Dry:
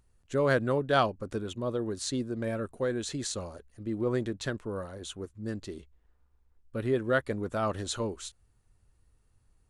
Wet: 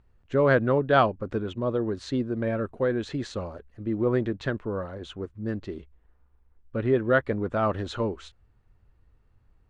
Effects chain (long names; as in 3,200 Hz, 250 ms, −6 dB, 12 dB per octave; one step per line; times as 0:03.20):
low-pass filter 2,600 Hz 12 dB per octave
level +5 dB